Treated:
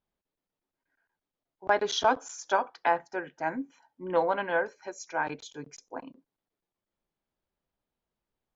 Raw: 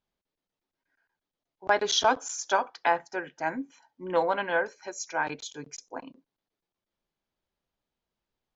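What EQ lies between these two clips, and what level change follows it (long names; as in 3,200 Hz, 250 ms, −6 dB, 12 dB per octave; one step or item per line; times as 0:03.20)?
high-shelf EQ 2,800 Hz −8.5 dB
0.0 dB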